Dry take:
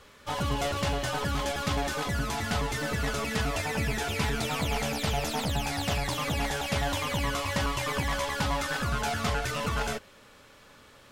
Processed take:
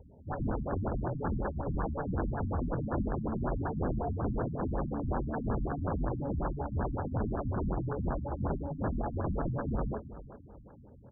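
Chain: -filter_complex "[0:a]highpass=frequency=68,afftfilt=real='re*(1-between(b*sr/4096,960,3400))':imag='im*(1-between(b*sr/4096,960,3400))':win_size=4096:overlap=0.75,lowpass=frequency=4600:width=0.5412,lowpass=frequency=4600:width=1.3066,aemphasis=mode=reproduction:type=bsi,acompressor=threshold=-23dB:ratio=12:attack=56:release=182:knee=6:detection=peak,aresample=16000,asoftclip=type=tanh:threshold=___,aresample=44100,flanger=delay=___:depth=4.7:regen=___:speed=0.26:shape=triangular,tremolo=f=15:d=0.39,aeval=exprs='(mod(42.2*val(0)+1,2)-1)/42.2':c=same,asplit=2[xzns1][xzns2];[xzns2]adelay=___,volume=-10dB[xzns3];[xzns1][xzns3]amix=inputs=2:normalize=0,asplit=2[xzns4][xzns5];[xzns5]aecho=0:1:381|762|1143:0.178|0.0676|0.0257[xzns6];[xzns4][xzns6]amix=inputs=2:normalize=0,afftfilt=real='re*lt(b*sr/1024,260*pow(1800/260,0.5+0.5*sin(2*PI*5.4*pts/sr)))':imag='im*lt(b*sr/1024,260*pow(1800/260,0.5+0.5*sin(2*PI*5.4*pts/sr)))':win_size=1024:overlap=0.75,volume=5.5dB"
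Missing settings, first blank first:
-24.5dB, 4.1, -87, 24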